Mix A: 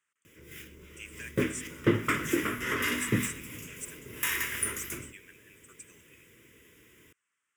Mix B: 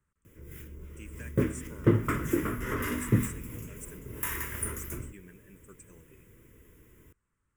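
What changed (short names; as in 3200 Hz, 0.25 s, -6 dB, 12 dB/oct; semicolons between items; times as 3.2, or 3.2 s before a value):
speech: remove HPF 1200 Hz 6 dB/oct; master: remove weighting filter D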